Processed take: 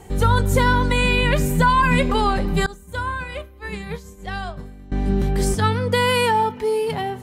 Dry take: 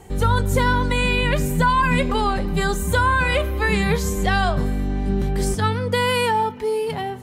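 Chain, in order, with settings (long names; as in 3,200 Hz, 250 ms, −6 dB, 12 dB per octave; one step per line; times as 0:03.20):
0:02.66–0:04.92: downward expander −9 dBFS
level +1.5 dB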